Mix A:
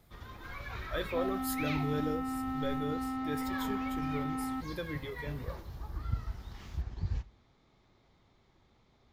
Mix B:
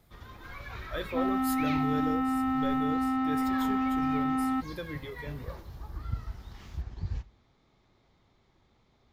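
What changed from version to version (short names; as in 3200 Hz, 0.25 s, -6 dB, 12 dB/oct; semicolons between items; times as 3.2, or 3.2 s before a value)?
second sound +7.5 dB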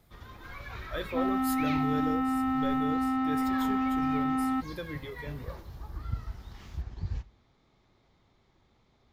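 none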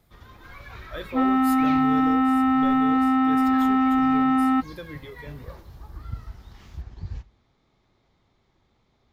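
second sound +8.5 dB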